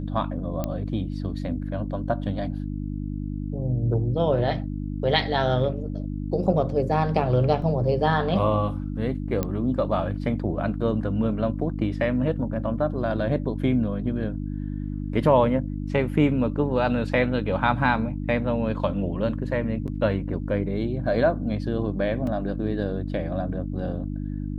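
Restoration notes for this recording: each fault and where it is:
hum 50 Hz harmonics 6 -30 dBFS
0.64 s: pop -14 dBFS
7.62 s: dropout 2.7 ms
9.43 s: pop -12 dBFS
19.87–19.88 s: dropout 8.3 ms
22.27 s: dropout 2.8 ms

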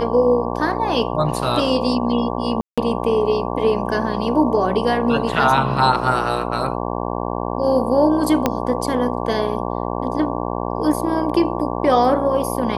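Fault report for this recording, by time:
buzz 60 Hz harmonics 19 -24 dBFS
2.61–2.78 s: dropout 166 ms
8.46 s: pop -3 dBFS

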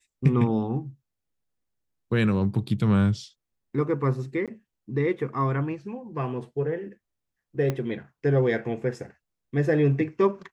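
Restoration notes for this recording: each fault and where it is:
4.46–4.48 s: dropout 17 ms
7.70 s: pop -14 dBFS

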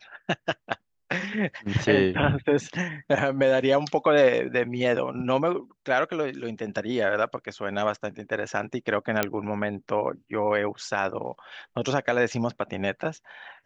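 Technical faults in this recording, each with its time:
9.23 s: pop -7 dBFS

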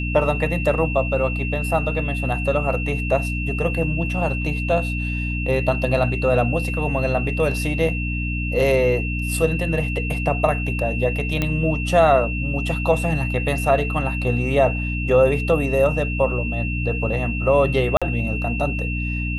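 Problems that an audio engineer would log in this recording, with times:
hum 60 Hz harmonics 5 -25 dBFS
whine 2.7 kHz -28 dBFS
11.42 s: pop -8 dBFS
17.97–18.02 s: dropout 46 ms

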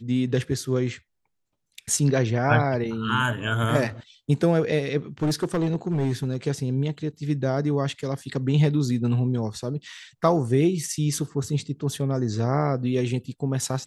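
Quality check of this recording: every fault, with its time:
5.22–6.37 s: clipped -19 dBFS

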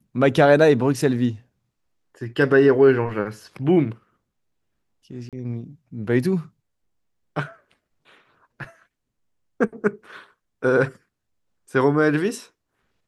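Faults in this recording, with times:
5.29–5.33 s: dropout 37 ms

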